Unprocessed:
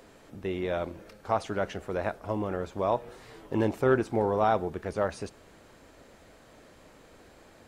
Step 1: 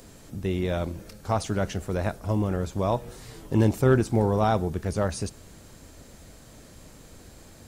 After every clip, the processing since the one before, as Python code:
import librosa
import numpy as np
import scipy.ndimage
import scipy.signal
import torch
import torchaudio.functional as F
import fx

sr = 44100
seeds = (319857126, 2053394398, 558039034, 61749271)

y = fx.bass_treble(x, sr, bass_db=12, treble_db=13)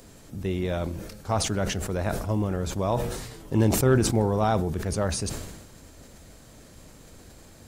y = fx.sustainer(x, sr, db_per_s=48.0)
y = y * 10.0 ** (-1.0 / 20.0)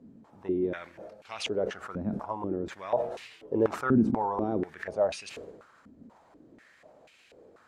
y = fx.filter_held_bandpass(x, sr, hz=4.1, low_hz=230.0, high_hz=2600.0)
y = y * 10.0 ** (6.5 / 20.0)